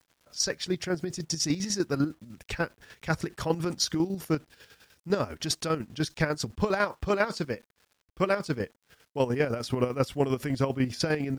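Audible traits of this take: a quantiser's noise floor 10-bit, dither none; chopped level 10 Hz, depth 60%, duty 45%

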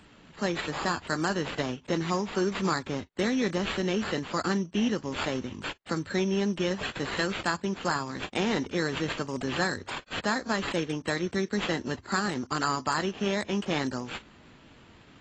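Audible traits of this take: aliases and images of a low sample rate 5900 Hz, jitter 0%; AAC

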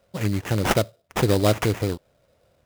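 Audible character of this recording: aliases and images of a low sample rate 4400 Hz, jitter 20%

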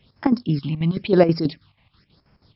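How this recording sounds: a quantiser's noise floor 10-bit, dither triangular; chopped level 6.2 Hz, depth 65%, duty 65%; phasing stages 6, 0.97 Hz, lowest notch 370–3700 Hz; MP3

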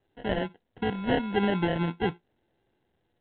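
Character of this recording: a buzz of ramps at a fixed pitch in blocks of 8 samples; phasing stages 12, 0.88 Hz, lowest notch 750–2400 Hz; aliases and images of a low sample rate 1200 Hz, jitter 0%; µ-law

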